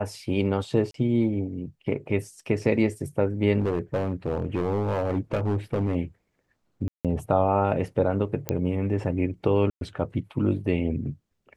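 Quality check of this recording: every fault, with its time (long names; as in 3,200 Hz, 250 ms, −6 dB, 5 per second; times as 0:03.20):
0:00.91–0:00.94: drop-out 33 ms
0:03.59–0:05.96: clipping −20 dBFS
0:06.88–0:07.05: drop-out 167 ms
0:08.49: click −10 dBFS
0:09.70–0:09.81: drop-out 112 ms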